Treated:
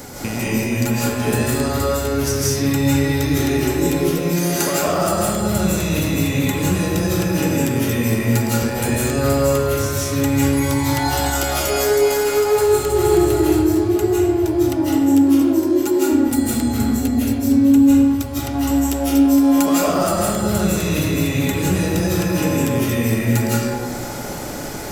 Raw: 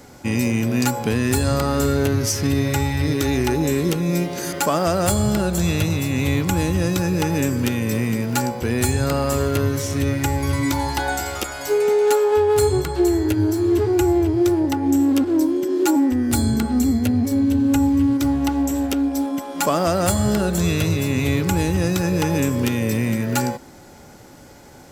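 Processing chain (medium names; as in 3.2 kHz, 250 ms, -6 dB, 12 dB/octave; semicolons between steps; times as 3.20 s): treble shelf 7.5 kHz +9 dB; compression 10:1, threshold -31 dBFS, peak gain reduction 19 dB; 11.44–13.44 s: bouncing-ball echo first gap 320 ms, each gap 0.7×, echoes 5; algorithmic reverb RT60 1.5 s, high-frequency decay 0.55×, pre-delay 120 ms, DRR -7.5 dB; trim +8 dB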